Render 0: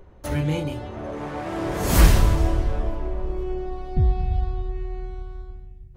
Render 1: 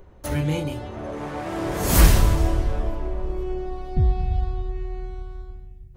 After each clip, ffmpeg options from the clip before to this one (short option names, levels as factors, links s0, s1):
-af "highshelf=f=6800:g=5.5"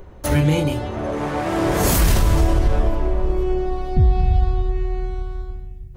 -af "alimiter=level_in=5.01:limit=0.891:release=50:level=0:latency=1,volume=0.473"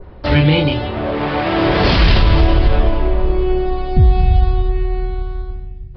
-af "adynamicequalizer=threshold=0.00708:dfrequency=3100:dqfactor=1:tfrequency=3100:tqfactor=1:attack=5:release=100:ratio=0.375:range=3.5:mode=boostabove:tftype=bell,aresample=11025,aresample=44100,volume=1.68"